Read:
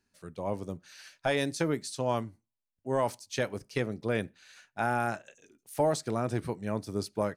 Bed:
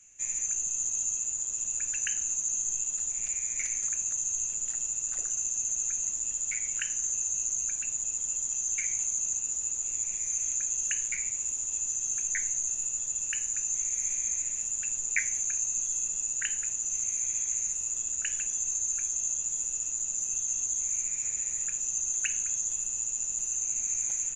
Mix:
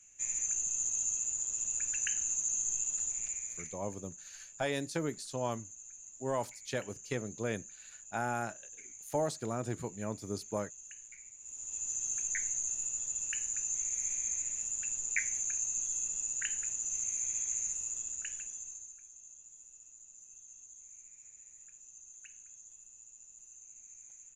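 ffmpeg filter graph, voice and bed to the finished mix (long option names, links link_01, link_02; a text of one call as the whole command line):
ffmpeg -i stem1.wav -i stem2.wav -filter_complex "[0:a]adelay=3350,volume=-5.5dB[link_01];[1:a]volume=12.5dB,afade=type=out:start_time=3.03:duration=0.77:silence=0.141254,afade=type=in:start_time=11.4:duration=0.56:silence=0.16788,afade=type=out:start_time=17.68:duration=1.29:silence=0.11885[link_02];[link_01][link_02]amix=inputs=2:normalize=0" out.wav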